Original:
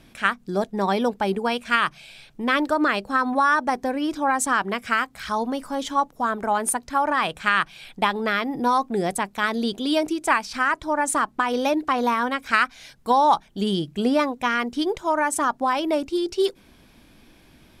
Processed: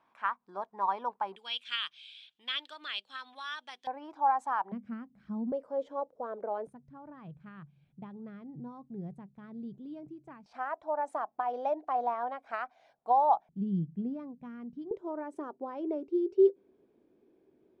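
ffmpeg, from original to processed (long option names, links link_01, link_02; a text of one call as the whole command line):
ffmpeg -i in.wav -af "asetnsamples=nb_out_samples=441:pad=0,asendcmd='1.36 bandpass f 3300;3.87 bandpass f 870;4.72 bandpass f 210;5.52 bandpass f 520;6.67 bandpass f 140;10.46 bandpass f 710;13.49 bandpass f 170;14.91 bandpass f 400',bandpass=frequency=1000:width_type=q:width=5.7:csg=0" out.wav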